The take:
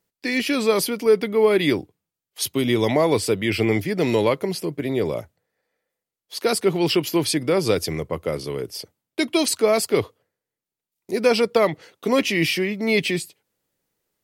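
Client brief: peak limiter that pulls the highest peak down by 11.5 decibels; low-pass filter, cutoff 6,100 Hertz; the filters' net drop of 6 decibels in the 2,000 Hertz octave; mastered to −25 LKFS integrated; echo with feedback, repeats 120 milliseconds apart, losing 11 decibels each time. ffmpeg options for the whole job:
ffmpeg -i in.wav -af "lowpass=6100,equalizer=frequency=2000:width_type=o:gain=-7,alimiter=limit=-18dB:level=0:latency=1,aecho=1:1:120|240|360:0.282|0.0789|0.0221,volume=2.5dB" out.wav

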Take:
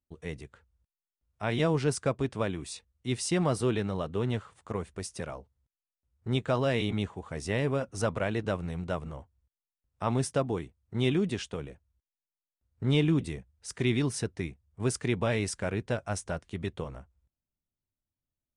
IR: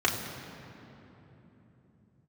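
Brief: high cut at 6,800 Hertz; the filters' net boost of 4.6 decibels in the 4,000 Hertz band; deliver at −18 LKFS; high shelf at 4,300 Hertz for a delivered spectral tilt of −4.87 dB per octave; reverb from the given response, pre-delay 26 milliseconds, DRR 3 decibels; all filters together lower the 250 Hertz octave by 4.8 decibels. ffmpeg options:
-filter_complex "[0:a]lowpass=6800,equalizer=frequency=250:width_type=o:gain=-7,equalizer=frequency=4000:width_type=o:gain=9,highshelf=frequency=4300:gain=-5,asplit=2[link_01][link_02];[1:a]atrim=start_sample=2205,adelay=26[link_03];[link_02][link_03]afir=irnorm=-1:irlink=0,volume=-16dB[link_04];[link_01][link_04]amix=inputs=2:normalize=0,volume=12.5dB"

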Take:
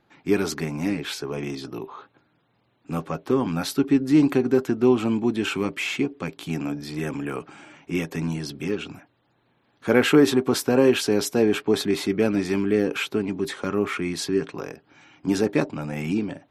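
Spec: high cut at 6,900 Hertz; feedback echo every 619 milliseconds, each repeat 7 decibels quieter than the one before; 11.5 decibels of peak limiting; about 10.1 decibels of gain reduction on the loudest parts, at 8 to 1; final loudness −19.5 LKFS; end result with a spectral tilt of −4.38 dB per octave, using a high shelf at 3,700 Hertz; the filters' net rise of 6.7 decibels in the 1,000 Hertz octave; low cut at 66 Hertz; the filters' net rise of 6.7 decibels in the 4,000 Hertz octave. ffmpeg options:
ffmpeg -i in.wav -af "highpass=66,lowpass=6900,equalizer=frequency=1000:width_type=o:gain=8,highshelf=frequency=3700:gain=5.5,equalizer=frequency=4000:width_type=o:gain=5,acompressor=threshold=-21dB:ratio=8,alimiter=limit=-22dB:level=0:latency=1,aecho=1:1:619|1238|1857|2476|3095:0.447|0.201|0.0905|0.0407|0.0183,volume=11.5dB" out.wav

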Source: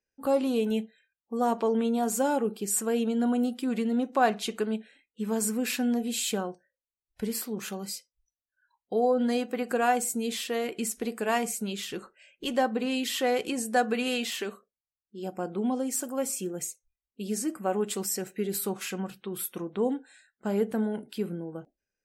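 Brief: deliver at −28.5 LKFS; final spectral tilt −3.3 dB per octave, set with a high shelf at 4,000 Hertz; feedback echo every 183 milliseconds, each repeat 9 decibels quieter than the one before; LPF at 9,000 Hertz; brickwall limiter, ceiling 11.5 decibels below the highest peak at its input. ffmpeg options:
ffmpeg -i in.wav -af "lowpass=9000,highshelf=frequency=4000:gain=7,alimiter=limit=-23dB:level=0:latency=1,aecho=1:1:183|366|549|732:0.355|0.124|0.0435|0.0152,volume=3.5dB" out.wav

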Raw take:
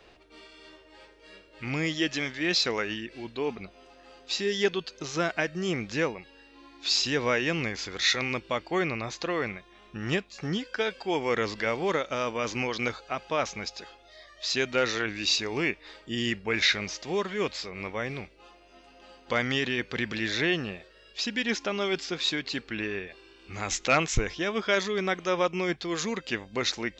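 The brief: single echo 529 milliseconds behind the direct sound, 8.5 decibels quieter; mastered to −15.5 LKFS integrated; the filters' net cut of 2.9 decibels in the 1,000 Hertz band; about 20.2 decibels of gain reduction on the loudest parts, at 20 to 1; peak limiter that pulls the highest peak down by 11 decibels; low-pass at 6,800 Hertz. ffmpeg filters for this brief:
ffmpeg -i in.wav -af "lowpass=6800,equalizer=frequency=1000:width_type=o:gain=-4,acompressor=threshold=-38dB:ratio=20,alimiter=level_in=9dB:limit=-24dB:level=0:latency=1,volume=-9dB,aecho=1:1:529:0.376,volume=28dB" out.wav

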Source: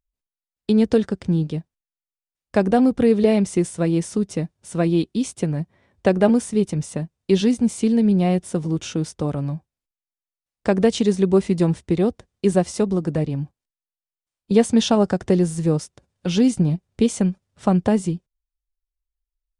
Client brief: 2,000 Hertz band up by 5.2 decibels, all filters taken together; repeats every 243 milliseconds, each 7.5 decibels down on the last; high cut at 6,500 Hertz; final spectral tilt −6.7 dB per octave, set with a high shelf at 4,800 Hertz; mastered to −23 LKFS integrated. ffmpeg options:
ffmpeg -i in.wav -af "lowpass=6500,equalizer=frequency=2000:width_type=o:gain=7.5,highshelf=frequency=4800:gain=-5.5,aecho=1:1:243|486|729|972|1215:0.422|0.177|0.0744|0.0312|0.0131,volume=-3dB" out.wav

